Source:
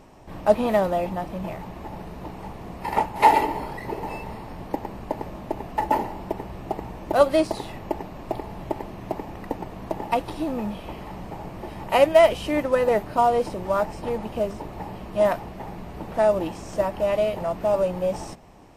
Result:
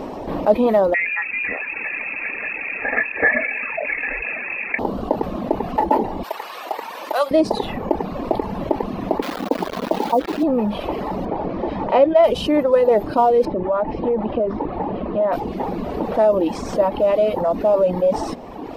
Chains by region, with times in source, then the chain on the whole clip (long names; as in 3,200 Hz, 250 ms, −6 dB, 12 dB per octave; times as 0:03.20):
0:00.94–0:04.79: notch filter 1,100 Hz, Q 5.9 + voice inversion scrambler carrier 2,600 Hz
0:06.23–0:07.31: high-pass filter 1,200 Hz + high-shelf EQ 7,000 Hz +7.5 dB
0:09.22–0:10.43: Chebyshev band-pass filter 170–1,100 Hz, order 4 + bit-depth reduction 6 bits, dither none
0:11.25–0:12.24: high-frequency loss of the air 130 metres + notch filter 2,800 Hz, Q 22 + double-tracking delay 15 ms −13.5 dB
0:13.45–0:15.33: high-frequency loss of the air 320 metres + downward compressor 2 to 1, threshold −28 dBFS
whole clip: reverb reduction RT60 0.88 s; octave-band graphic EQ 125/250/500/1,000/4,000/8,000 Hz −4/+10/+10/+5/+5/−7 dB; envelope flattener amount 50%; level −8.5 dB